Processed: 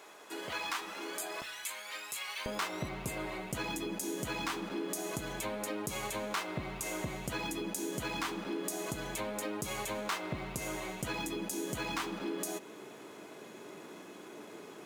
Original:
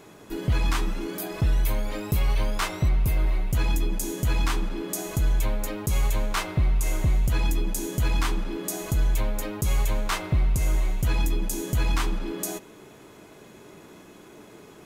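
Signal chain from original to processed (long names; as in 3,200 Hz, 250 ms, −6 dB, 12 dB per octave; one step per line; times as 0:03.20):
high-pass filter 650 Hz 12 dB per octave, from 0:01.42 1,500 Hz, from 0:02.46 230 Hz
downward compressor 3 to 1, threshold −34 dBFS, peak gain reduction 8.5 dB
linearly interpolated sample-rate reduction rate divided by 2×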